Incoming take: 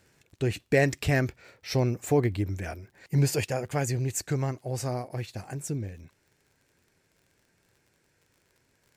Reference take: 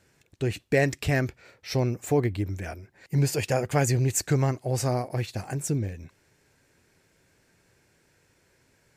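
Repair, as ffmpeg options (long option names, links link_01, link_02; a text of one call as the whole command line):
ffmpeg -i in.wav -af "adeclick=threshold=4,asetnsamples=nb_out_samples=441:pad=0,asendcmd='3.44 volume volume 5dB',volume=0dB" out.wav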